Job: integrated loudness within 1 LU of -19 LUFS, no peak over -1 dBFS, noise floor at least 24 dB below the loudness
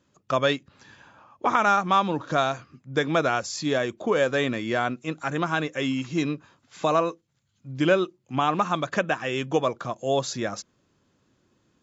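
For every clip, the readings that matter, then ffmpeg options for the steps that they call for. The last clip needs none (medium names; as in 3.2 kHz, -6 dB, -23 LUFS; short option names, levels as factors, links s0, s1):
loudness -25.5 LUFS; peak level -6.5 dBFS; loudness target -19.0 LUFS
-> -af "volume=2.11,alimiter=limit=0.891:level=0:latency=1"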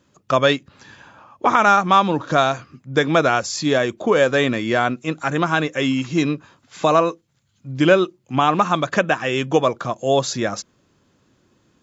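loudness -19.0 LUFS; peak level -1.0 dBFS; noise floor -63 dBFS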